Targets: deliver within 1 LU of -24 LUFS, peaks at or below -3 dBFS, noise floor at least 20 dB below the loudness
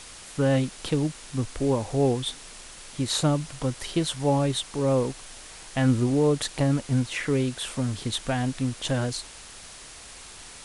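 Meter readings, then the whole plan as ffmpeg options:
noise floor -45 dBFS; noise floor target -46 dBFS; loudness -26.0 LUFS; peak level -10.0 dBFS; loudness target -24.0 LUFS
-> -af "afftdn=nr=6:nf=-45"
-af "volume=1.26"

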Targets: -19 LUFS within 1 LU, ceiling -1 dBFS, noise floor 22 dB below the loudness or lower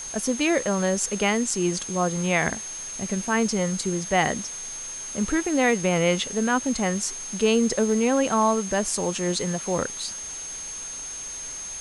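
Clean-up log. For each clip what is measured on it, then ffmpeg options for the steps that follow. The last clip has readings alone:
steady tone 6.4 kHz; tone level -33 dBFS; noise floor -35 dBFS; noise floor target -47 dBFS; loudness -24.5 LUFS; peak level -8.0 dBFS; loudness target -19.0 LUFS
-> -af "bandreject=f=6400:w=30"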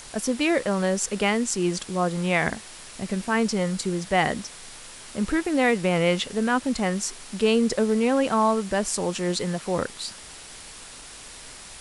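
steady tone not found; noise floor -43 dBFS; noise floor target -47 dBFS
-> -af "afftdn=nr=6:nf=-43"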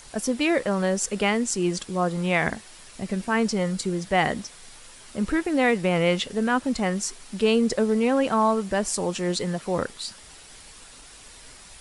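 noise floor -47 dBFS; loudness -24.5 LUFS; peak level -8.5 dBFS; loudness target -19.0 LUFS
-> -af "volume=1.88"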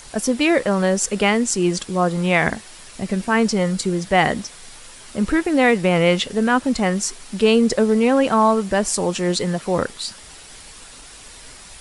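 loudness -19.0 LUFS; peak level -3.0 dBFS; noise floor -42 dBFS

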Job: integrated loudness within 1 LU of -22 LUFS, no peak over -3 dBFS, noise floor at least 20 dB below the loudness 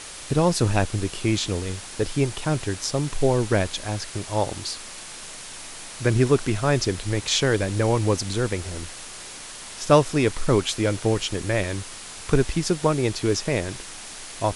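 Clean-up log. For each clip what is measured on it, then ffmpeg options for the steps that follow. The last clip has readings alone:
noise floor -39 dBFS; noise floor target -44 dBFS; loudness -24.0 LUFS; peak level -4.0 dBFS; loudness target -22.0 LUFS
-> -af "afftdn=nr=6:nf=-39"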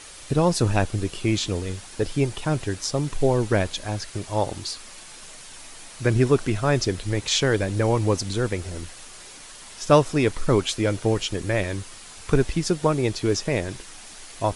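noise floor -43 dBFS; noise floor target -44 dBFS
-> -af "afftdn=nr=6:nf=-43"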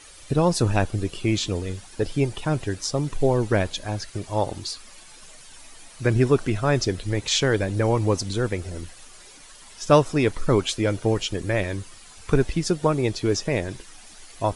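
noise floor -47 dBFS; loudness -24.0 LUFS; peak level -4.0 dBFS; loudness target -22.0 LUFS
-> -af "volume=1.26,alimiter=limit=0.708:level=0:latency=1"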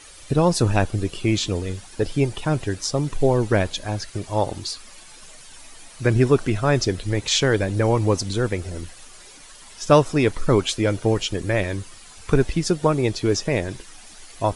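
loudness -22.0 LUFS; peak level -3.0 dBFS; noise floor -45 dBFS

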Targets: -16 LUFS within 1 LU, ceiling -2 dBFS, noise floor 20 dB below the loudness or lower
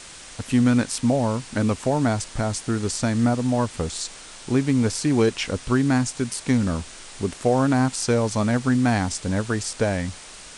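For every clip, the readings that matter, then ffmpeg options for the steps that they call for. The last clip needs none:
noise floor -42 dBFS; noise floor target -43 dBFS; loudness -23.0 LUFS; peak level -7.0 dBFS; loudness target -16.0 LUFS
-> -af "afftdn=nr=6:nf=-42"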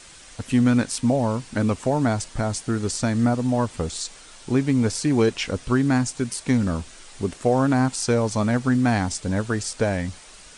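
noise floor -46 dBFS; loudness -23.0 LUFS; peak level -7.5 dBFS; loudness target -16.0 LUFS
-> -af "volume=2.24,alimiter=limit=0.794:level=0:latency=1"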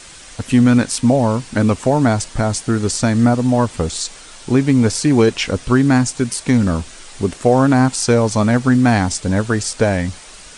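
loudness -16.0 LUFS; peak level -2.0 dBFS; noise floor -39 dBFS

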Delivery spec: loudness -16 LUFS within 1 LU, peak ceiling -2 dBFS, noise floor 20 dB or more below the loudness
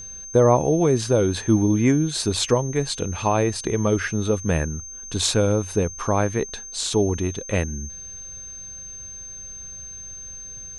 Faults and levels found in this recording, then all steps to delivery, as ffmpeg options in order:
steady tone 6.3 kHz; tone level -35 dBFS; loudness -22.0 LUFS; peak level -5.0 dBFS; loudness target -16.0 LUFS
-> -af "bandreject=f=6300:w=30"
-af "volume=2,alimiter=limit=0.794:level=0:latency=1"

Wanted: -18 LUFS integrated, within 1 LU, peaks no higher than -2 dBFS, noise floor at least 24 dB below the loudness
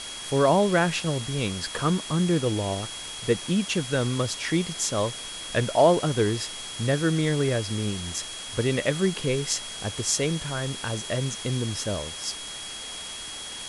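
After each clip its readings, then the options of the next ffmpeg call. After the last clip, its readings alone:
steady tone 3.3 kHz; tone level -38 dBFS; noise floor -37 dBFS; noise floor target -50 dBFS; loudness -26.0 LUFS; peak level -7.0 dBFS; loudness target -18.0 LUFS
-> -af "bandreject=f=3300:w=30"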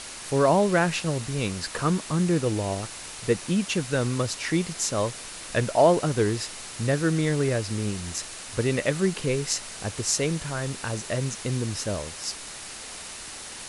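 steady tone not found; noise floor -40 dBFS; noise floor target -50 dBFS
-> -af "afftdn=nr=10:nf=-40"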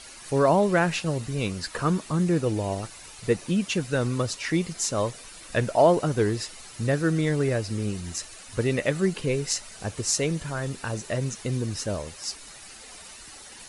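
noise floor -45 dBFS; noise floor target -51 dBFS
-> -af "afftdn=nr=6:nf=-45"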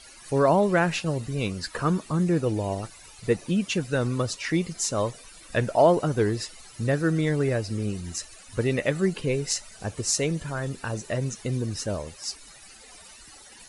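noise floor -49 dBFS; noise floor target -51 dBFS
-> -af "afftdn=nr=6:nf=-49"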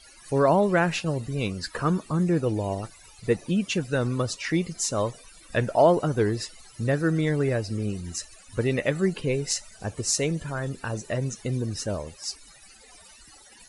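noise floor -52 dBFS; loudness -26.5 LUFS; peak level -7.0 dBFS; loudness target -18.0 LUFS
-> -af "volume=2.66,alimiter=limit=0.794:level=0:latency=1"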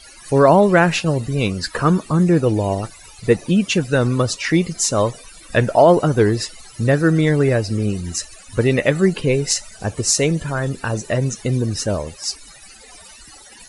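loudness -18.0 LUFS; peak level -2.0 dBFS; noise floor -43 dBFS

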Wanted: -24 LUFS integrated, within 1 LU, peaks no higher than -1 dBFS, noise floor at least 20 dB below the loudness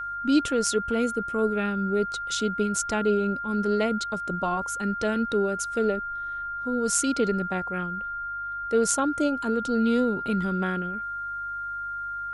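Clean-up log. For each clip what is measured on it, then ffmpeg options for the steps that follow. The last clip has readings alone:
hum 50 Hz; highest harmonic 150 Hz; hum level -53 dBFS; steady tone 1.4 kHz; tone level -30 dBFS; loudness -26.5 LUFS; peak level -7.0 dBFS; loudness target -24.0 LUFS
-> -af "bandreject=f=50:t=h:w=4,bandreject=f=100:t=h:w=4,bandreject=f=150:t=h:w=4"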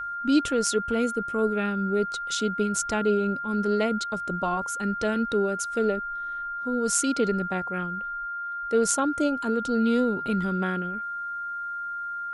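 hum not found; steady tone 1.4 kHz; tone level -30 dBFS
-> -af "bandreject=f=1400:w=30"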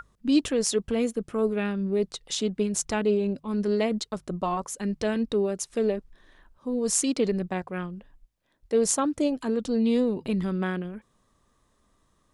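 steady tone not found; loudness -27.0 LUFS; peak level -7.0 dBFS; loudness target -24.0 LUFS
-> -af "volume=1.41"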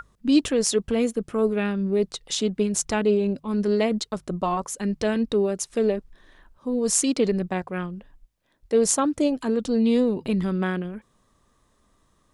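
loudness -24.0 LUFS; peak level -4.0 dBFS; noise floor -65 dBFS

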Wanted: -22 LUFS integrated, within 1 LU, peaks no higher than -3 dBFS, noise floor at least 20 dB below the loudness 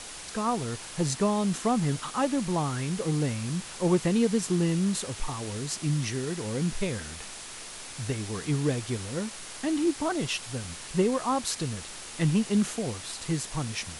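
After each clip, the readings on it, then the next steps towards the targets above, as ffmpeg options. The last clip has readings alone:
noise floor -42 dBFS; noise floor target -49 dBFS; loudness -29.0 LUFS; peak level -12.0 dBFS; loudness target -22.0 LUFS
-> -af "afftdn=nr=7:nf=-42"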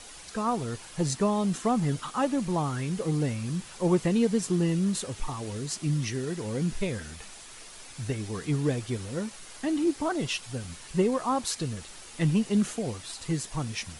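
noise floor -46 dBFS; noise floor target -50 dBFS
-> -af "afftdn=nr=6:nf=-46"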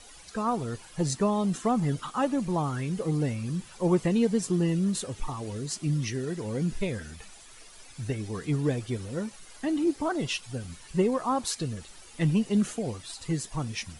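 noise floor -50 dBFS; loudness -29.5 LUFS; peak level -13.0 dBFS; loudness target -22.0 LUFS
-> -af "volume=2.37"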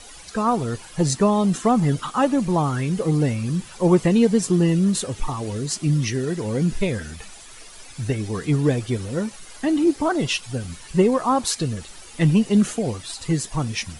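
loudness -22.0 LUFS; peak level -5.5 dBFS; noise floor -43 dBFS

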